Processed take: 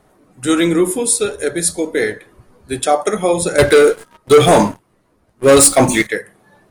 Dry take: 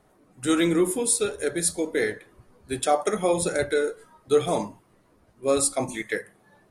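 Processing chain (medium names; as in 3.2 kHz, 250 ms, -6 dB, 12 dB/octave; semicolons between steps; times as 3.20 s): 3.58–6.07 s: waveshaping leveller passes 3; trim +7.5 dB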